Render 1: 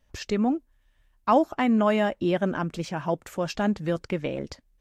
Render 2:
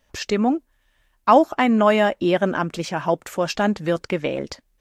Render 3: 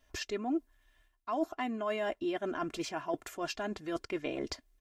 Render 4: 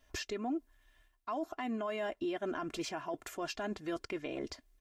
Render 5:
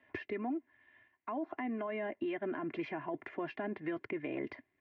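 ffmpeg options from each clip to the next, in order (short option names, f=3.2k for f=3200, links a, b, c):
-af "lowshelf=f=200:g=-9.5,volume=7.5dB"
-af "areverse,acompressor=threshold=-26dB:ratio=10,areverse,aecho=1:1:2.9:0.68,volume=-6.5dB"
-af "alimiter=level_in=6dB:limit=-24dB:level=0:latency=1:release=104,volume=-6dB,volume=1dB"
-filter_complex "[0:a]highpass=f=120:w=0.5412,highpass=f=120:w=1.3066,equalizer=f=190:t=q:w=4:g=-4,equalizer=f=490:t=q:w=4:g=-5,equalizer=f=700:t=q:w=4:g=-4,equalizer=f=1.3k:t=q:w=4:g=-9,equalizer=f=2k:t=q:w=4:g=7,lowpass=f=2.3k:w=0.5412,lowpass=f=2.3k:w=1.3066,acrossover=split=310|740[a][b][c];[a]acompressor=threshold=-48dB:ratio=4[d];[b]acompressor=threshold=-47dB:ratio=4[e];[c]acompressor=threshold=-51dB:ratio=4[f];[d][e][f]amix=inputs=3:normalize=0,volume=6.5dB"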